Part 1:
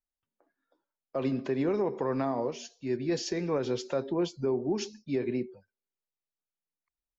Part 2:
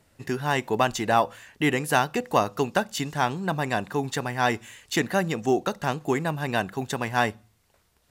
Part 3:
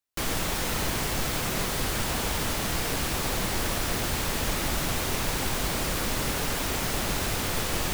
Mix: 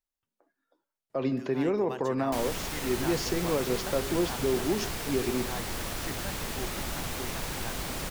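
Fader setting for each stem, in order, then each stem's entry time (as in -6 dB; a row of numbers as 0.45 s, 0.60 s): +1.0 dB, -18.0 dB, -6.5 dB; 0.00 s, 1.10 s, 2.15 s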